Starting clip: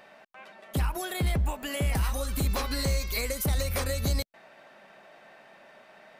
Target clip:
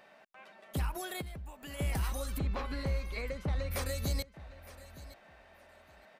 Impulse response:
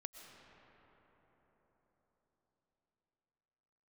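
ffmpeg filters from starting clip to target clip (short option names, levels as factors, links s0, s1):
-filter_complex "[0:a]asplit=3[s0][s1][s2];[s0]afade=t=out:st=1.2:d=0.02[s3];[s1]acompressor=threshold=0.0126:ratio=4,afade=t=in:st=1.2:d=0.02,afade=t=out:st=1.78:d=0.02[s4];[s2]afade=t=in:st=1.78:d=0.02[s5];[s3][s4][s5]amix=inputs=3:normalize=0,asplit=3[s6][s7][s8];[s6]afade=t=out:st=2.37:d=0.02[s9];[s7]lowpass=2600,afade=t=in:st=2.37:d=0.02,afade=t=out:st=3.7:d=0.02[s10];[s8]afade=t=in:st=3.7:d=0.02[s11];[s9][s10][s11]amix=inputs=3:normalize=0,aecho=1:1:914|1828:0.141|0.0254,volume=0.501"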